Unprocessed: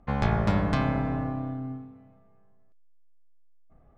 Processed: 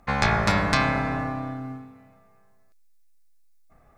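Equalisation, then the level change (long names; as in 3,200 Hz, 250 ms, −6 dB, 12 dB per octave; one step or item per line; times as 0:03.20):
tilt shelving filter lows −9 dB, about 1,100 Hz
parametric band 3,100 Hz −8.5 dB 0.29 octaves
+8.0 dB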